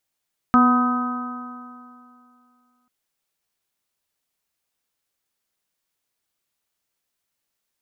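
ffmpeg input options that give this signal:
-f lavfi -i "aevalsrc='0.224*pow(10,-3*t/2.49)*sin(2*PI*245.28*t)+0.0251*pow(10,-3*t/2.49)*sin(2*PI*492.25*t)+0.0708*pow(10,-3*t/2.49)*sin(2*PI*742.57*t)+0.0668*pow(10,-3*t/2.49)*sin(2*PI*997.87*t)+0.211*pow(10,-3*t/2.49)*sin(2*PI*1259.73*t)+0.0335*pow(10,-3*t/2.49)*sin(2*PI*1529.65*t)':d=2.34:s=44100"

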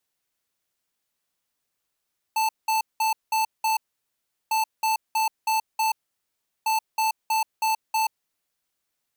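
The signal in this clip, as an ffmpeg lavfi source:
-f lavfi -i "aevalsrc='0.075*(2*lt(mod(881*t,1),0.5)-1)*clip(min(mod(mod(t,2.15),0.32),0.13-mod(mod(t,2.15),0.32))/0.005,0,1)*lt(mod(t,2.15),1.6)':d=6.45:s=44100"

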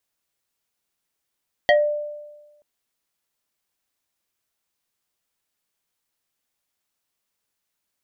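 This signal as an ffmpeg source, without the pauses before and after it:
-f lavfi -i "aevalsrc='0.299*pow(10,-3*t/1.22)*sin(2*PI*593*t+1.9*pow(10,-3*t/0.23)*sin(2*PI*2.19*593*t))':d=0.93:s=44100"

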